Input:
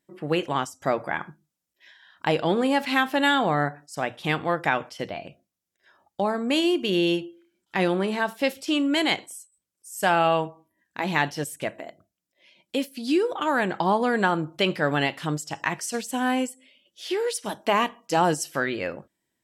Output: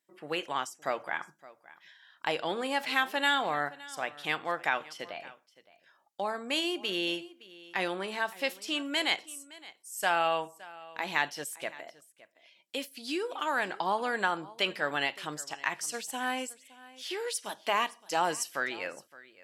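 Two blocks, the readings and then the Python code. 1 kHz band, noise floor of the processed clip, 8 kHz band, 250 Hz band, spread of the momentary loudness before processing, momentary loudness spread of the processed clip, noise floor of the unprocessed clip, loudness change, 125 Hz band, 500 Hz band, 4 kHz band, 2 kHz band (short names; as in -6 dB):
-6.0 dB, -68 dBFS, -3.0 dB, -13.5 dB, 12 LU, 15 LU, -83 dBFS, -7.0 dB, -18.5 dB, -9.5 dB, -3.5 dB, -4.0 dB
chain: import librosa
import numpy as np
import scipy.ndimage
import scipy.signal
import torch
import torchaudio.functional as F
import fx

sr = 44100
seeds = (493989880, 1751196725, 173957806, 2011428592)

y = fx.highpass(x, sr, hz=950.0, slope=6)
y = y + 10.0 ** (-20.0 / 20.0) * np.pad(y, (int(566 * sr / 1000.0), 0))[:len(y)]
y = F.gain(torch.from_numpy(y), -3.0).numpy()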